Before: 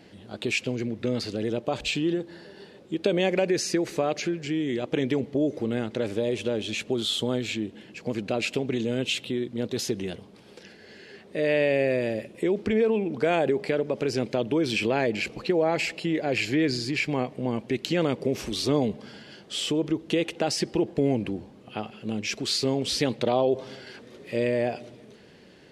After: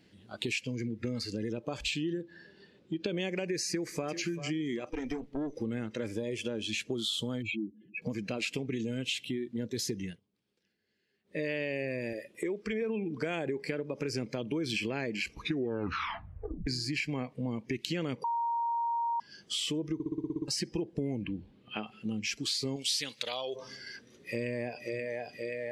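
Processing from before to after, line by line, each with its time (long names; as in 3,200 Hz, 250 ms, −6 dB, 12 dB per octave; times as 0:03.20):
0:02.21–0:03.17: high-frequency loss of the air 64 metres
0:03.69–0:04.11: delay throw 390 ms, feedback 35%, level −12.5 dB
0:04.91–0:05.56: tube saturation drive 22 dB, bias 0.8
0:07.42–0:08.02: expanding power law on the bin magnitudes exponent 2.6
0:10.04–0:11.40: duck −20.5 dB, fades 0.16 s
0:12.13–0:12.82: bass and treble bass −9 dB, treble −1 dB
0:15.33: tape stop 1.34 s
0:18.24–0:19.20: beep over 934 Hz −17 dBFS
0:19.94: stutter in place 0.06 s, 9 plays
0:21.25–0:21.87: high shelf with overshoot 4,800 Hz −7 dB, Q 1.5
0:22.76–0:23.56: tilt shelving filter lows −8.5 dB, about 1,400 Hz
0:24.26–0:24.84: delay throw 530 ms, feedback 75%, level −4.5 dB
whole clip: noise reduction from a noise print of the clip's start 13 dB; parametric band 700 Hz −8.5 dB 1.6 octaves; downward compressor 3 to 1, threshold −38 dBFS; level +4.5 dB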